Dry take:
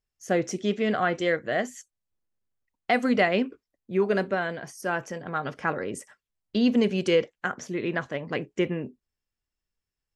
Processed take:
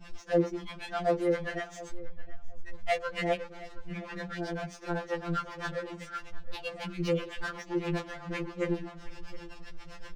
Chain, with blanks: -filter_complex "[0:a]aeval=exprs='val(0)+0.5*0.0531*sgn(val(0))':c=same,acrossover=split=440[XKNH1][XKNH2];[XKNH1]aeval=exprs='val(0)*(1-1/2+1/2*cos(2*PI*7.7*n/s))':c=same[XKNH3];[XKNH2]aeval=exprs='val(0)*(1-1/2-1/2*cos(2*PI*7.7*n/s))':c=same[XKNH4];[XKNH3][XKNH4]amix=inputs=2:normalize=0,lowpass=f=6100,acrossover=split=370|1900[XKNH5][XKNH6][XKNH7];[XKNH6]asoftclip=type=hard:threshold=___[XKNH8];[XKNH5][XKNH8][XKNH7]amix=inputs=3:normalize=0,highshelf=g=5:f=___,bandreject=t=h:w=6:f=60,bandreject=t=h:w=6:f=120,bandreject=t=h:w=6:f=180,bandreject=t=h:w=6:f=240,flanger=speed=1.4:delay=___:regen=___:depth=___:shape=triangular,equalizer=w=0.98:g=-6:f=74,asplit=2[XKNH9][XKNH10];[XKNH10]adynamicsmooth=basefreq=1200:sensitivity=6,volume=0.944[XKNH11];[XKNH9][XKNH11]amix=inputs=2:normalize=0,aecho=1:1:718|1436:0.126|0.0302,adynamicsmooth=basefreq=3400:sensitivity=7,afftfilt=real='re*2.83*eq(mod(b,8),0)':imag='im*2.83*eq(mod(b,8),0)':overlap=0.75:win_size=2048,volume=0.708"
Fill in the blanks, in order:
0.0596, 3800, 1.2, -43, 3.1